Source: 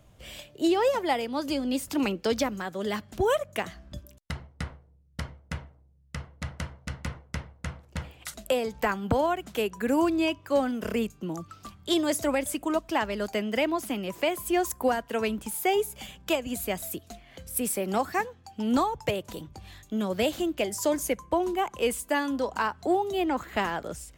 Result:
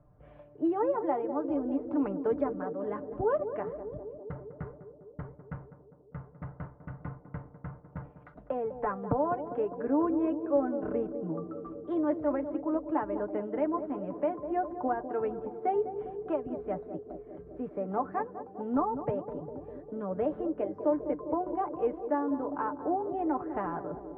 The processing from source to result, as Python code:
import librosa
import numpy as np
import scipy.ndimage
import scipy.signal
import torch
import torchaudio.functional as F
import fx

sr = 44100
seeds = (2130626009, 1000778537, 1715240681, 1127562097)

p1 = scipy.signal.sosfilt(scipy.signal.butter(4, 1300.0, 'lowpass', fs=sr, output='sos'), x)
p2 = p1 + 0.59 * np.pad(p1, (int(6.8 * sr / 1000.0), 0))[:len(p1)]
p3 = p2 + fx.echo_banded(p2, sr, ms=201, feedback_pct=82, hz=390.0, wet_db=-9, dry=0)
y = p3 * librosa.db_to_amplitude(-5.0)